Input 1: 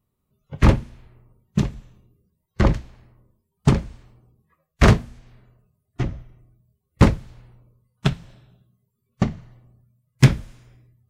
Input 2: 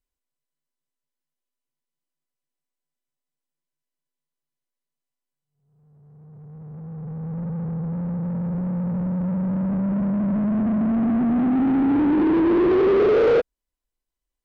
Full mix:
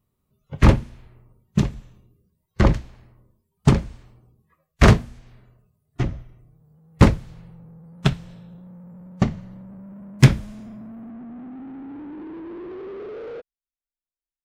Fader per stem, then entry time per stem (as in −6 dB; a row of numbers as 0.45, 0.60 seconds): +1.0, −18.0 decibels; 0.00, 0.00 seconds